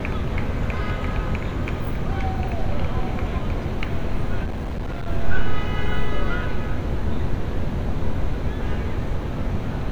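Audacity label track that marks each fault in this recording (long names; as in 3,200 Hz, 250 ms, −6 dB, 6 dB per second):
4.440000	5.080000	clipping −23.5 dBFS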